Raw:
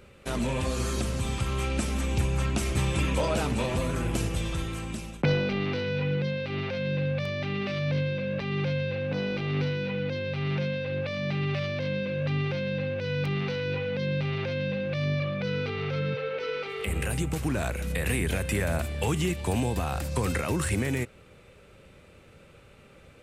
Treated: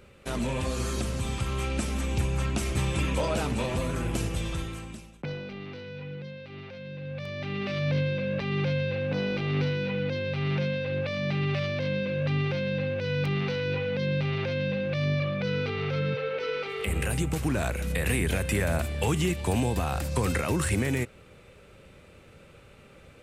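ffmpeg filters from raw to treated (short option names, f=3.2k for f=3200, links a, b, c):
-af "volume=11dB,afade=t=out:st=4.55:d=0.55:silence=0.316228,afade=t=in:st=7:d=0.86:silence=0.251189"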